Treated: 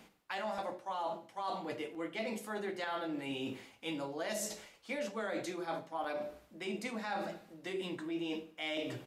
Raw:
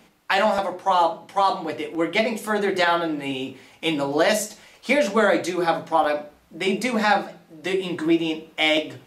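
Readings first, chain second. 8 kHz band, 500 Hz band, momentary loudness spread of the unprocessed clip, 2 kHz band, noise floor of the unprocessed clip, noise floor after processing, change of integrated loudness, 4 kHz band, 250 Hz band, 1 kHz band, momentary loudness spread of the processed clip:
-12.0 dB, -17.0 dB, 9 LU, -18.0 dB, -56 dBFS, -63 dBFS, -17.5 dB, -17.0 dB, -15.5 dB, -18.5 dB, 5 LU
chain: de-hum 85.2 Hz, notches 7; reverse; compressor 5:1, threshold -34 dBFS, peak gain reduction 17.5 dB; reverse; feedback echo 77 ms, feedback 37%, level -19.5 dB; gain -3.5 dB

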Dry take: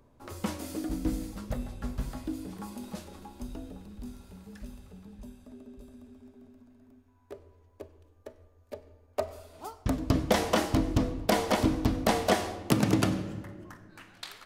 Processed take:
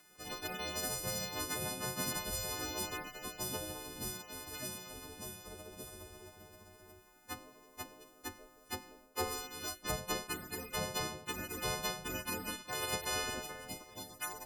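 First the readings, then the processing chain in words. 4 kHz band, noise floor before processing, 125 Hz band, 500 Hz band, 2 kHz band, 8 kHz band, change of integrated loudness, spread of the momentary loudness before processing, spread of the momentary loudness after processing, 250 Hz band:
-1.0 dB, -62 dBFS, -13.5 dB, -10.0 dB, -2.5 dB, +3.5 dB, -9.0 dB, 23 LU, 13 LU, -15.5 dB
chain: frequency quantiser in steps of 3 st; reverse; compressor 10:1, threshold -34 dBFS, peak gain reduction 17.5 dB; reverse; spectral gate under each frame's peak -10 dB weak; one-sided clip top -34.5 dBFS; gain +7.5 dB

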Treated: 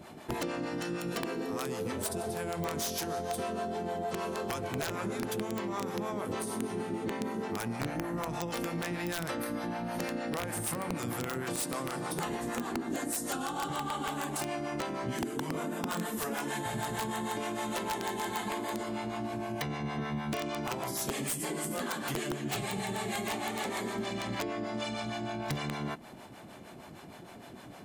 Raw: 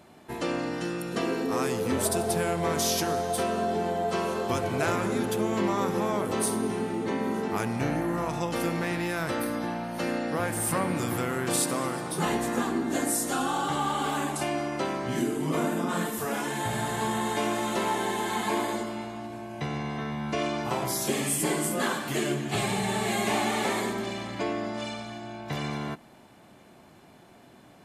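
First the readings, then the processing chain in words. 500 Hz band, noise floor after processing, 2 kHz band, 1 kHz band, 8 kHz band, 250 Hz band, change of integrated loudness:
-6.5 dB, -49 dBFS, -5.5 dB, -6.0 dB, -6.5 dB, -6.0 dB, -6.0 dB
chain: compressor 12:1, threshold -36 dBFS, peak gain reduction 14.5 dB; harmonic tremolo 6.5 Hz, depth 70%, crossover 470 Hz; wrapped overs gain 32.5 dB; gain +8 dB

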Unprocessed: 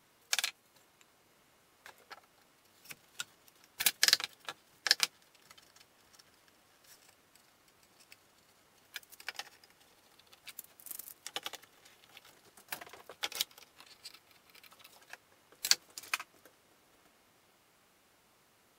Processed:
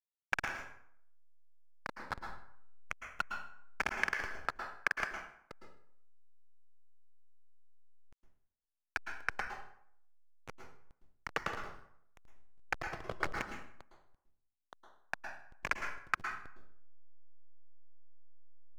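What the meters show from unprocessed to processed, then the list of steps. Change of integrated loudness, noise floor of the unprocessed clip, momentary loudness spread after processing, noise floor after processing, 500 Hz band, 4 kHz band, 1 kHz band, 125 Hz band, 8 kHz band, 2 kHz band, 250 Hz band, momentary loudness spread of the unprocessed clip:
-5.5 dB, -68 dBFS, 21 LU, under -85 dBFS, +7.0 dB, -17.0 dB, +8.0 dB, +12.5 dB, -18.5 dB, +3.0 dB, +8.5 dB, 23 LU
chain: steep low-pass 2400 Hz 48 dB/oct; bell 1300 Hz +7 dB 0.51 oct; compressor 6:1, threshold -44 dBFS, peak gain reduction 18.5 dB; whine 1100 Hz -62 dBFS; backlash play -38.5 dBFS; plate-style reverb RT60 0.65 s, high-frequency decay 0.7×, pre-delay 0.1 s, DRR 4 dB; gain +14.5 dB

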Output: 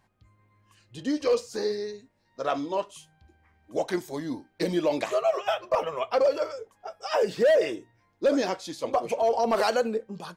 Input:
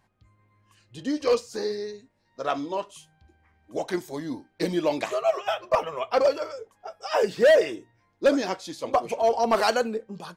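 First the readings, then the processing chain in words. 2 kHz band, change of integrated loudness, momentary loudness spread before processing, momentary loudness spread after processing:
-3.5 dB, -1.5 dB, 14 LU, 12 LU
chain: dynamic EQ 530 Hz, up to +5 dB, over -31 dBFS, Q 2.5; limiter -15.5 dBFS, peak gain reduction 8 dB

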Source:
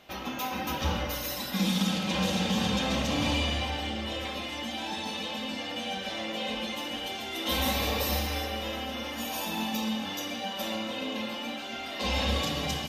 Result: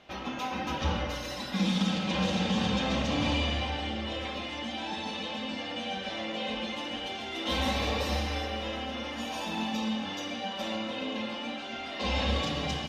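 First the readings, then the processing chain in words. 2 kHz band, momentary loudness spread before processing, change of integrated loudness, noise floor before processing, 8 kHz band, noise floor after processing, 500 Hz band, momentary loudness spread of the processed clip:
-1.0 dB, 7 LU, -1.0 dB, -37 dBFS, -6.5 dB, -38 dBFS, 0.0 dB, 7 LU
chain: air absorption 84 m

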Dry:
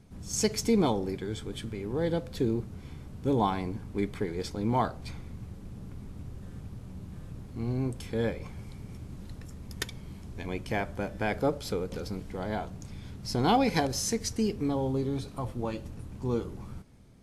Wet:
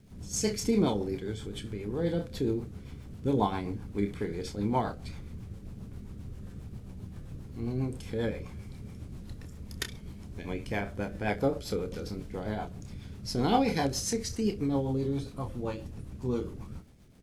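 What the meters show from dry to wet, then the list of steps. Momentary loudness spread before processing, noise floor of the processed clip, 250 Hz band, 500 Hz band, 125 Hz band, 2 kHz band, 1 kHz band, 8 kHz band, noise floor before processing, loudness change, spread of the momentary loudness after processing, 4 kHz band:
17 LU, -46 dBFS, -0.5 dB, -1.0 dB, -1.0 dB, -2.0 dB, -2.5 dB, -1.5 dB, -46 dBFS, -1.0 dB, 16 LU, -2.0 dB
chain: crackle 570/s -56 dBFS; early reflections 29 ms -7.5 dB, 64 ms -16 dB; rotary speaker horn 7.5 Hz

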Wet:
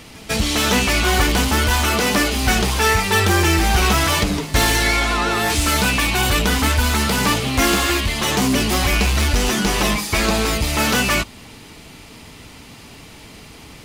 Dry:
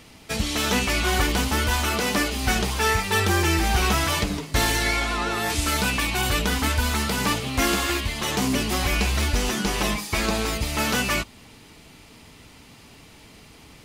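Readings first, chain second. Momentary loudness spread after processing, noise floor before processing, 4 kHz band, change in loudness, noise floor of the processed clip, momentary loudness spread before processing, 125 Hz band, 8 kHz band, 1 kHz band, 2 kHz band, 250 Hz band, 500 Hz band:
3 LU, -49 dBFS, +6.0 dB, +6.0 dB, -41 dBFS, 4 LU, +5.5 dB, +6.0 dB, +5.5 dB, +5.5 dB, +6.0 dB, +5.5 dB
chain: in parallel at -9 dB: wavefolder -24.5 dBFS; on the sum: reverse echo 0.148 s -23.5 dB; gain +5 dB

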